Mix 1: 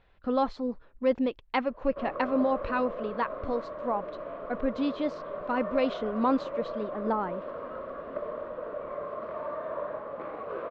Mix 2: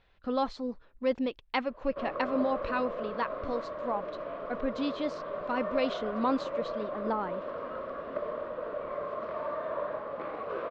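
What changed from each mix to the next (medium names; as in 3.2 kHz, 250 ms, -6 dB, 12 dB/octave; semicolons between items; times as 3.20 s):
speech -3.5 dB; master: add treble shelf 3.3 kHz +10.5 dB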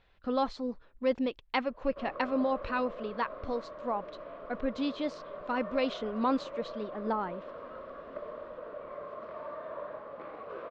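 background -6.5 dB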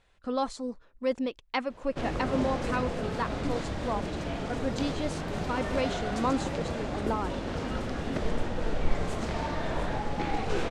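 background: remove two resonant band-passes 810 Hz, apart 0.88 oct; master: remove low-pass 4.6 kHz 24 dB/octave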